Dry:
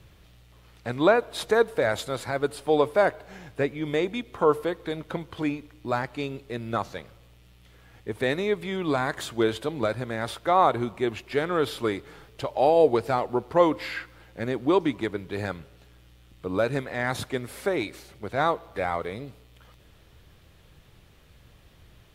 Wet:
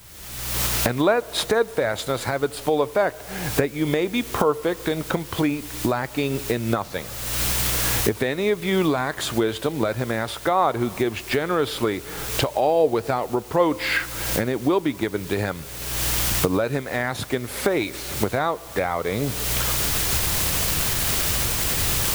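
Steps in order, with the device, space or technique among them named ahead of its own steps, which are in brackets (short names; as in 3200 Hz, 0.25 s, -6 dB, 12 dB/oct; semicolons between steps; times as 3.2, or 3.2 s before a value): cheap recorder with automatic gain (white noise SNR 22 dB; recorder AGC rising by 42 dB/s)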